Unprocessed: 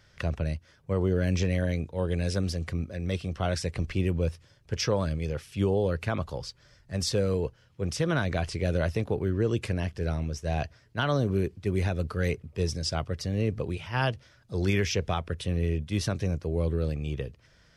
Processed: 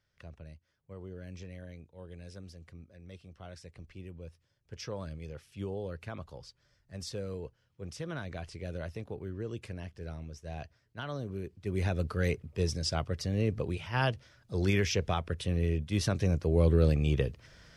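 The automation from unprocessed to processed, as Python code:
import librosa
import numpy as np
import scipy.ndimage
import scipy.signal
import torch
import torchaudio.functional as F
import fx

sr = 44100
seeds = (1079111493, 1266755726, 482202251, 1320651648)

y = fx.gain(x, sr, db=fx.line((4.22, -19.0), (5.02, -12.0), (11.43, -12.0), (11.9, -2.0), (15.89, -2.0), (16.84, 4.5)))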